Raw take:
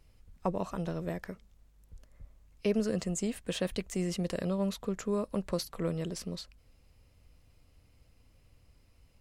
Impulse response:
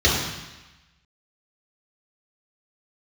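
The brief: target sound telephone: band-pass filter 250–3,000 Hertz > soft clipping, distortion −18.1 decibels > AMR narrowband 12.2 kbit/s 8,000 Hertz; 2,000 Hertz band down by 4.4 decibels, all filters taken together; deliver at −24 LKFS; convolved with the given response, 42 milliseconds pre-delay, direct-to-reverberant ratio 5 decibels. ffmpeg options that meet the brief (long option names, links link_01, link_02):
-filter_complex "[0:a]equalizer=frequency=2000:width_type=o:gain=-4.5,asplit=2[link_01][link_02];[1:a]atrim=start_sample=2205,adelay=42[link_03];[link_02][link_03]afir=irnorm=-1:irlink=0,volume=-25dB[link_04];[link_01][link_04]amix=inputs=2:normalize=0,highpass=250,lowpass=3000,asoftclip=threshold=-24.5dB,volume=13dB" -ar 8000 -c:a libopencore_amrnb -b:a 12200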